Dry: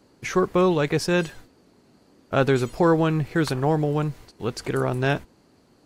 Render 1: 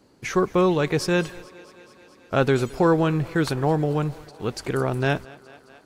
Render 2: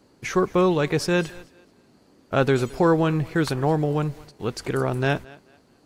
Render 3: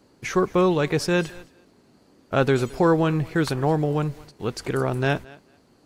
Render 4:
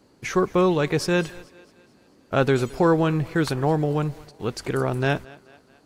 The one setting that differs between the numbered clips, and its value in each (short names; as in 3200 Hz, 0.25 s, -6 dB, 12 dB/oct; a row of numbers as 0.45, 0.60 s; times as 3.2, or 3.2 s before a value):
thinning echo, feedback: 77, 28, 17, 51%